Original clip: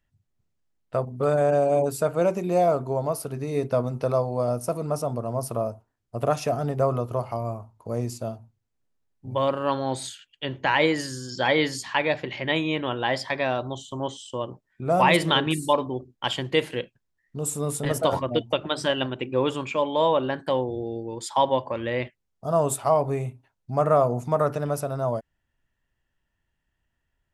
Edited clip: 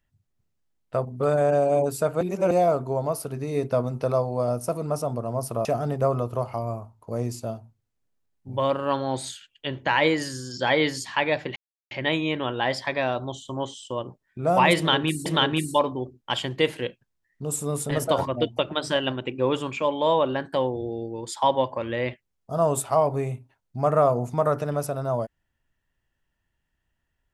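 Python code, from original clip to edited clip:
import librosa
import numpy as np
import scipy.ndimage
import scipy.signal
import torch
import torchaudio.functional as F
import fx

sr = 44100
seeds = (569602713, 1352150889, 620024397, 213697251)

y = fx.edit(x, sr, fx.reverse_span(start_s=2.21, length_s=0.3),
    fx.cut(start_s=5.65, length_s=0.78),
    fx.insert_silence(at_s=12.34, length_s=0.35),
    fx.repeat(start_s=15.2, length_s=0.49, count=2), tone=tone)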